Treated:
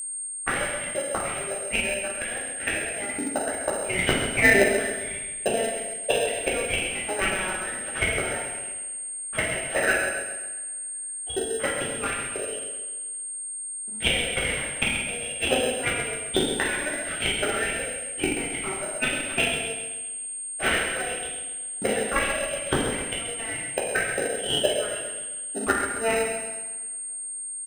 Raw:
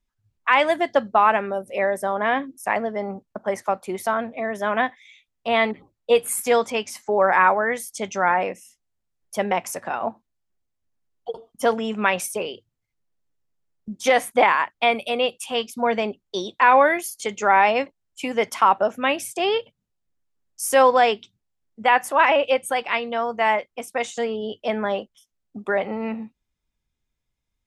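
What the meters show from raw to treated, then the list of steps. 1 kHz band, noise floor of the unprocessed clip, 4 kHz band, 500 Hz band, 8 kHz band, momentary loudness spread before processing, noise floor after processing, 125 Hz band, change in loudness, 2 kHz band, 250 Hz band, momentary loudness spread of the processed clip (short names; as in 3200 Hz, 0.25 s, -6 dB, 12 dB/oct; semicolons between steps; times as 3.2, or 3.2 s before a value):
-13.0 dB, -79 dBFS, +2.0 dB, -6.0 dB, +9.5 dB, 13 LU, -34 dBFS, n/a, -4.0 dB, -1.0 dB, -2.5 dB, 8 LU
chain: tracing distortion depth 0.16 ms; low-pass opened by the level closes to 1400 Hz, open at -14 dBFS; harmonic-percussive split percussive +5 dB; EQ curve 660 Hz 0 dB, 980 Hz -15 dB, 1500 Hz 0 dB, 3100 Hz +3 dB, 5500 Hz -23 dB; LFO high-pass saw up 2.2 Hz 280–3300 Hz; flipped gate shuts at -17 dBFS, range -27 dB; two-slope reverb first 0.87 s, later 2.9 s, from -25 dB, DRR -6 dB; in parallel at -6 dB: sample-and-hold 39×; on the sum: whine 8600 Hz -34 dBFS; on a send: feedback echo 0.133 s, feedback 46%, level -9 dB; on the sum: gain +3.5 dB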